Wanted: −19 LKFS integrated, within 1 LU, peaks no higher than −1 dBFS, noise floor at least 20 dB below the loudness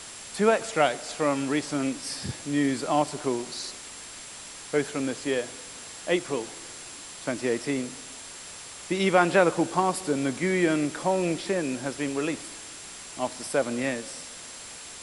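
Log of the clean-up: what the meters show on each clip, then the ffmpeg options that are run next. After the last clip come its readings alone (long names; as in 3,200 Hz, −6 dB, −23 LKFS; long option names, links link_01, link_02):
interfering tone 7,500 Hz; level of the tone −47 dBFS; background noise floor −42 dBFS; target noise floor −48 dBFS; integrated loudness −27.5 LKFS; sample peak −6.5 dBFS; target loudness −19.0 LKFS
→ -af "bandreject=frequency=7500:width=30"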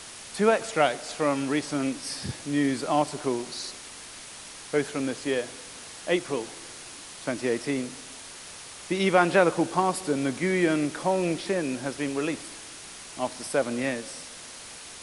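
interfering tone none found; background noise floor −43 dBFS; target noise floor −48 dBFS
→ -af "afftdn=noise_reduction=6:noise_floor=-43"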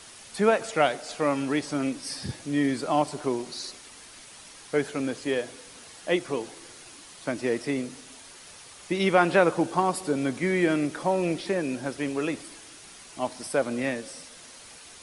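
background noise floor −48 dBFS; integrated loudness −27.0 LKFS; sample peak −6.5 dBFS; target loudness −19.0 LKFS
→ -af "volume=8dB,alimiter=limit=-1dB:level=0:latency=1"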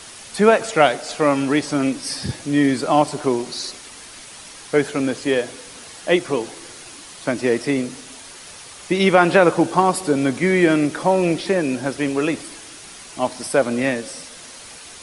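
integrated loudness −19.5 LKFS; sample peak −1.0 dBFS; background noise floor −40 dBFS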